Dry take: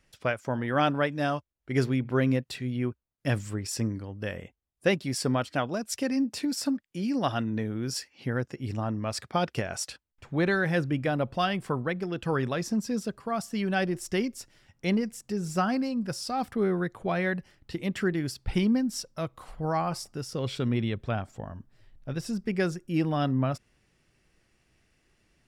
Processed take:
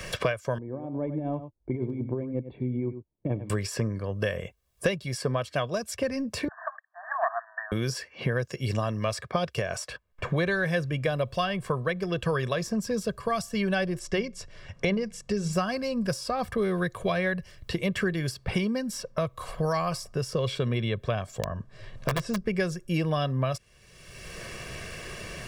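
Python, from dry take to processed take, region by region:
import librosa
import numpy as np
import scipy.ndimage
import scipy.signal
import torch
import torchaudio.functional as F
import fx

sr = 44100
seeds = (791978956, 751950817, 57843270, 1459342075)

y = fx.chain(x, sr, fx.formant_cascade(vowel='u'),
    fx.over_compress(threshold_db=-36.0, ratio=-1.0),
    fx.echo_single(ms=95, db=-12.0), at=(0.58, 3.5))
y = fx.chain(y, sr, fx.self_delay(depth_ms=0.19),
    fx.brickwall_bandpass(low_hz=620.0, high_hz=1900.0), at=(6.48, 7.72))
y = fx.chain(y, sr, fx.air_absorb(metres=69.0),
    fx.hum_notches(base_hz=60, count=3), at=(13.99, 15.53))
y = fx.chain(y, sr, fx.lowpass(hz=7800.0, slope=12),
    fx.overflow_wrap(gain_db=24.0), at=(21.4, 22.41))
y = y + 0.67 * np.pad(y, (int(1.8 * sr / 1000.0), 0))[:len(y)]
y = fx.band_squash(y, sr, depth_pct=100)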